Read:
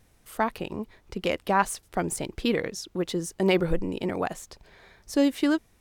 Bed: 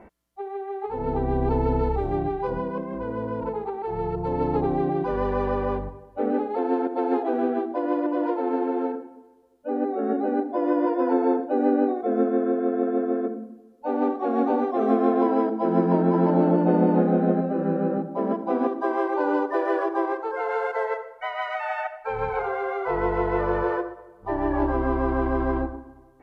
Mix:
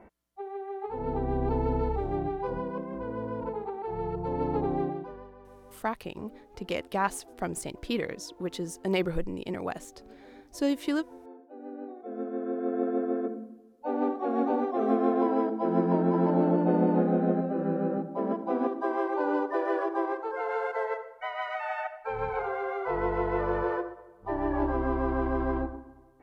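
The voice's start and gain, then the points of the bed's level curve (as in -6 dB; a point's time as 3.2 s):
5.45 s, -5.0 dB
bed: 4.83 s -5 dB
5.36 s -27 dB
11.29 s -27 dB
12.78 s -4.5 dB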